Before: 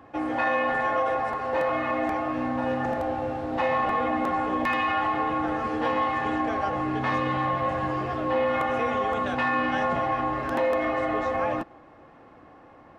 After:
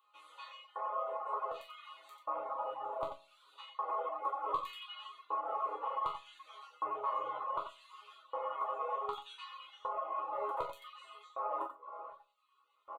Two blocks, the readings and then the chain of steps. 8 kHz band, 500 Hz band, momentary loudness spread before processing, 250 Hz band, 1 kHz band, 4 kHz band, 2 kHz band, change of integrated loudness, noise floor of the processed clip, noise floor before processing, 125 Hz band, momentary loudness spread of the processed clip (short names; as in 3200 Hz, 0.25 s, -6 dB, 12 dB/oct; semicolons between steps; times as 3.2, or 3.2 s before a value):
n/a, -16.0 dB, 4 LU, -33.5 dB, -11.5 dB, -10.0 dB, -26.0 dB, -13.5 dB, -72 dBFS, -51 dBFS, under -30 dB, 15 LU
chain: LFO high-pass square 0.66 Hz 680–4200 Hz; doubler 41 ms -13 dB; reverb removal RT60 0.51 s; in parallel at -2 dB: limiter -19 dBFS, peak gain reduction 7 dB; on the sum: bell 96 Hz +8.5 dB 0.45 oct; reverse; compressor 6:1, threshold -29 dBFS, peak gain reduction 13.5 dB; reverse; resonant high shelf 1600 Hz -8 dB, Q 3; fixed phaser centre 1100 Hz, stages 8; resonator bank C#3 minor, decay 0.47 s; echo 90 ms -6.5 dB; reverb removal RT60 0.58 s; gain +16 dB